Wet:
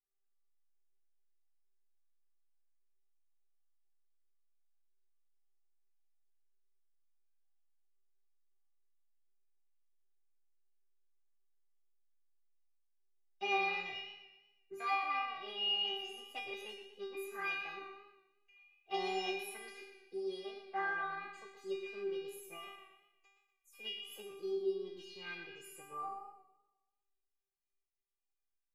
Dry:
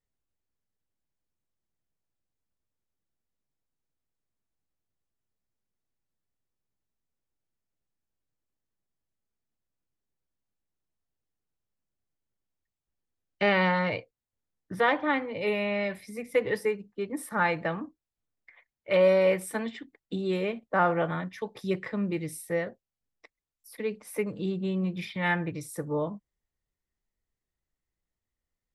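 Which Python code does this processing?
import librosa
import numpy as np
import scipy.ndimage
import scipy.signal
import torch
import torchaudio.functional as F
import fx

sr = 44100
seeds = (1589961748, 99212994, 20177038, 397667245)

y = fx.formant_shift(x, sr, semitones=4)
y = fx.stiff_resonator(y, sr, f0_hz=390.0, decay_s=0.84, stiffness=0.002)
y = fx.echo_warbled(y, sr, ms=119, feedback_pct=46, rate_hz=2.8, cents=71, wet_db=-10.5)
y = F.gain(torch.from_numpy(y), 8.5).numpy()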